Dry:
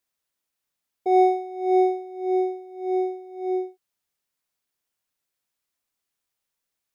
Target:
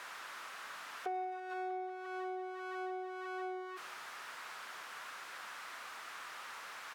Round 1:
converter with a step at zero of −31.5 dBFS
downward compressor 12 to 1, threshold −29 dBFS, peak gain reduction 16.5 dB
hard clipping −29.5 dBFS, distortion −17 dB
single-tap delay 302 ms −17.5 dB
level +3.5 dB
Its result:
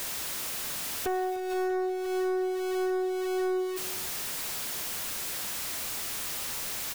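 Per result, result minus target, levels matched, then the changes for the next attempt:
1,000 Hz band −8.0 dB; echo-to-direct +9 dB
add after downward compressor: resonant band-pass 1,300 Hz, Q 1.9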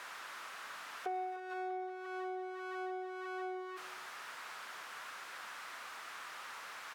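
echo-to-direct +9 dB
change: single-tap delay 302 ms −26.5 dB

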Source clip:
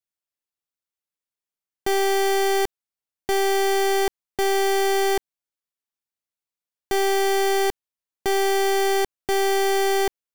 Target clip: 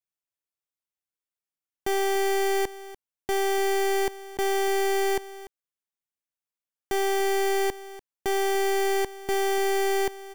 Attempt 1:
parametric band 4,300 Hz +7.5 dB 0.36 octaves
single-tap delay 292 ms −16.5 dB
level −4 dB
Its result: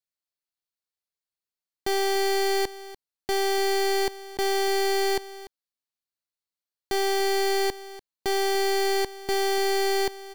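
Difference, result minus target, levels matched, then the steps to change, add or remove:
4,000 Hz band +4.5 dB
change: parametric band 4,300 Hz −4.5 dB 0.36 octaves

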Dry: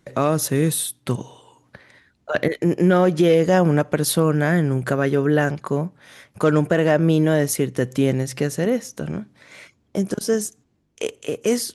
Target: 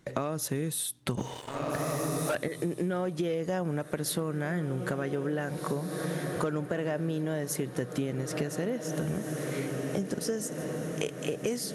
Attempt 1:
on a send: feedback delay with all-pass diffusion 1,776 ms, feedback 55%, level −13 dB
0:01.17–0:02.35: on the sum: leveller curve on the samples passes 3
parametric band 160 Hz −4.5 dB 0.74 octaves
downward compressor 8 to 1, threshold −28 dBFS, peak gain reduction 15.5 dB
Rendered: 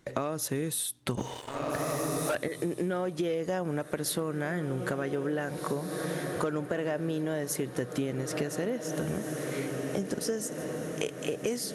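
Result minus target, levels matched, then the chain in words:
125 Hz band −2.5 dB
on a send: feedback delay with all-pass diffusion 1,776 ms, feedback 55%, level −13 dB
0:01.17–0:02.35: on the sum: leveller curve on the samples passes 3
downward compressor 8 to 1, threshold −28 dBFS, peak gain reduction 16 dB

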